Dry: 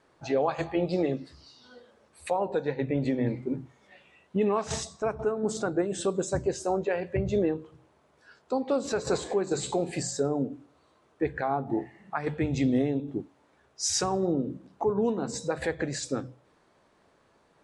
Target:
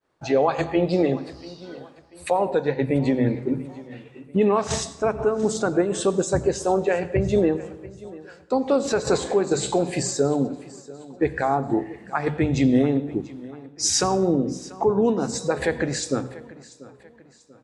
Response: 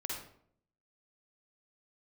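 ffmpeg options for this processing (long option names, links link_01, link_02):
-filter_complex "[0:a]agate=range=-33dB:threshold=-54dB:ratio=3:detection=peak,aecho=1:1:689|1378|2067:0.106|0.0434|0.0178,asplit=2[link_01][link_02];[1:a]atrim=start_sample=2205,asetrate=25578,aresample=44100[link_03];[link_02][link_03]afir=irnorm=-1:irlink=0,volume=-19.5dB[link_04];[link_01][link_04]amix=inputs=2:normalize=0,volume=5.5dB"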